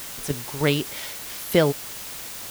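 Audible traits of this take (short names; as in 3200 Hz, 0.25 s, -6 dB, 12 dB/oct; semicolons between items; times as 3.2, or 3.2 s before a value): tremolo saw down 3.3 Hz, depth 60%; a quantiser's noise floor 6-bit, dither triangular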